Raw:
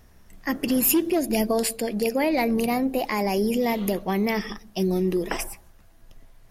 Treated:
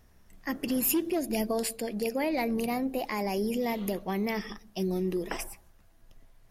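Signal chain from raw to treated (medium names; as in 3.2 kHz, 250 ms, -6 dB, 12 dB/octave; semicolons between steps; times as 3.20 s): trim -6.5 dB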